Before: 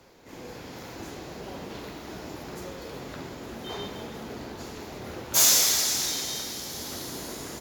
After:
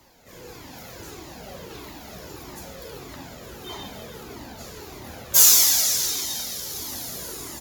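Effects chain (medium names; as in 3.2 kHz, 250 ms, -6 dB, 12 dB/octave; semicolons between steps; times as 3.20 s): treble shelf 7.8 kHz +11.5 dB; Shepard-style flanger falling 1.6 Hz; trim +3.5 dB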